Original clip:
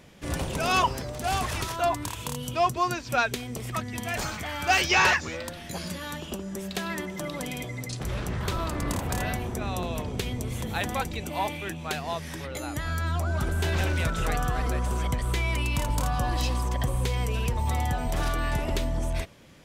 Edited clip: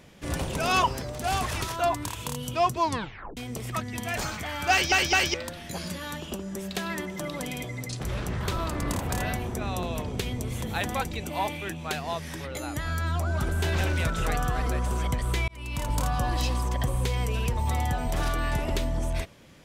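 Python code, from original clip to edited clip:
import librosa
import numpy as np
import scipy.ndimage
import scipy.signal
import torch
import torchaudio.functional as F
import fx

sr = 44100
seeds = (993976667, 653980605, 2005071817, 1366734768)

y = fx.edit(x, sr, fx.tape_stop(start_s=2.79, length_s=0.58),
    fx.stutter_over(start_s=4.71, slice_s=0.21, count=3),
    fx.fade_in_span(start_s=15.48, length_s=0.47), tone=tone)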